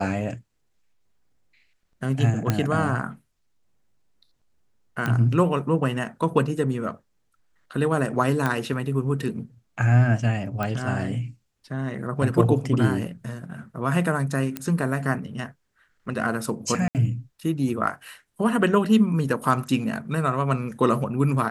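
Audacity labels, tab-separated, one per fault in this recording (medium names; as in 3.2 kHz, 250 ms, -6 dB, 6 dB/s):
2.500000	2.500000	pop -8 dBFS
5.060000	5.060000	pop -13 dBFS
8.460000	8.460000	pop -11 dBFS
10.630000	10.630000	pop -14 dBFS
14.570000	14.570000	pop -12 dBFS
16.880000	16.950000	dropout 68 ms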